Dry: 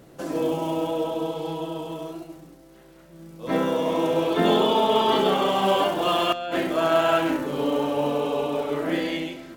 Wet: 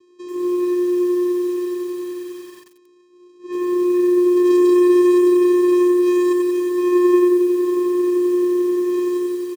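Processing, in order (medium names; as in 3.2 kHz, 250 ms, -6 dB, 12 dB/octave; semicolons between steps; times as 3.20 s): tone controls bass 0 dB, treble +14 dB; vocoder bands 4, square 356 Hz; delay 203 ms -17 dB; bit-crushed delay 90 ms, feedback 80%, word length 7-bit, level -3 dB; trim -1.5 dB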